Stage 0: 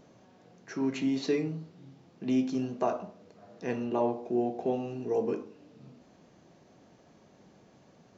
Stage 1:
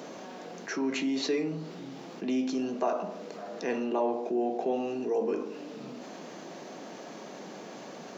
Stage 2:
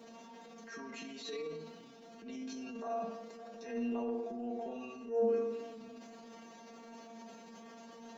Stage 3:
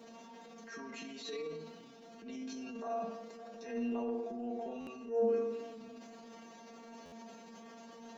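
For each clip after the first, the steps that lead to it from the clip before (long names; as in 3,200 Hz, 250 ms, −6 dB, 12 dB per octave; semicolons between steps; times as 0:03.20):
Bessel high-pass filter 290 Hz, order 8; envelope flattener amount 50%
tuned comb filter 230 Hz, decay 0.25 s, harmonics all, mix 100%; on a send at −9 dB: convolution reverb RT60 1.1 s, pre-delay 3 ms; on the sum: transient designer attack −9 dB, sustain +5 dB; level +2 dB
buffer that repeats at 0:04.80/0:07.05, samples 512, times 5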